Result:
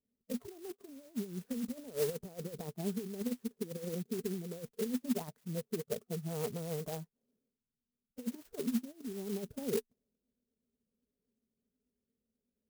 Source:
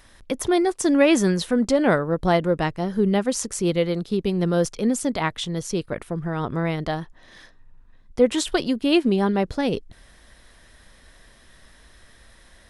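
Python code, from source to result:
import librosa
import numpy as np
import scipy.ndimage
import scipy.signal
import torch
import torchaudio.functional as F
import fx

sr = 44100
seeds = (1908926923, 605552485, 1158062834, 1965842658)

y = fx.env_lowpass(x, sr, base_hz=310.0, full_db=-16.5)
y = fx.noise_reduce_blind(y, sr, reduce_db=18)
y = fx.over_compress(y, sr, threshold_db=-25.0, ratio=-0.5)
y = fx.double_bandpass(y, sr, hz=320.0, octaves=0.82)
y = fx.vibrato(y, sr, rate_hz=8.1, depth_cents=79.0)
y = fx.clock_jitter(y, sr, seeds[0], jitter_ms=0.11)
y = y * librosa.db_to_amplitude(-3.0)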